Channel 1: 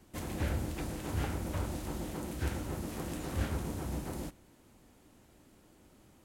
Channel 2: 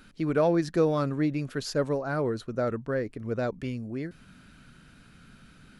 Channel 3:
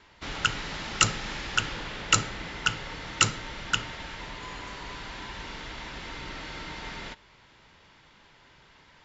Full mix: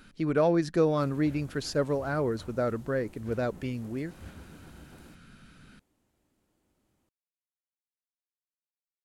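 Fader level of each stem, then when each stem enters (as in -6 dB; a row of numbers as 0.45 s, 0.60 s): -13.5 dB, -0.5 dB, mute; 0.85 s, 0.00 s, mute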